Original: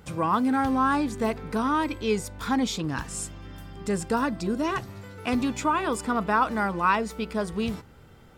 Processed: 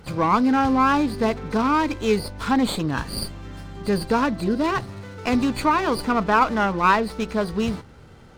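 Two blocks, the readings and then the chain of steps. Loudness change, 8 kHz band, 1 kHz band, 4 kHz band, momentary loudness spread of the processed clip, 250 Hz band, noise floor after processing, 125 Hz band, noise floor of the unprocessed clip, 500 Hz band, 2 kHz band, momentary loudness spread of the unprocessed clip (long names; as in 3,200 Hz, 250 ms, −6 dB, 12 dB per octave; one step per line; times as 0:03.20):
+4.5 dB, −1.5 dB, +5.0 dB, +5.5 dB, 12 LU, +5.0 dB, −46 dBFS, +5.0 dB, −51 dBFS, +5.0 dB, +4.5 dB, 11 LU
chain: hearing-aid frequency compression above 3,900 Hz 4 to 1
windowed peak hold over 5 samples
level +5 dB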